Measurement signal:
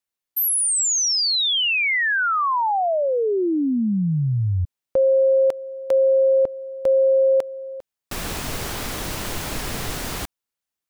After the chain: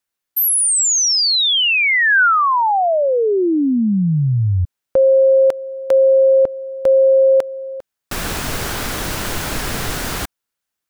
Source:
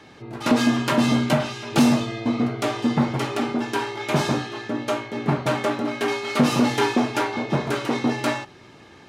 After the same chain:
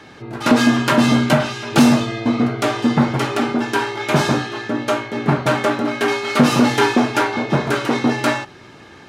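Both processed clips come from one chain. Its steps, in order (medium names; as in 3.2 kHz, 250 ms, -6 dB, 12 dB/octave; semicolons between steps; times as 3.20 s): peaking EQ 1.5 kHz +4 dB 0.43 oct; trim +5 dB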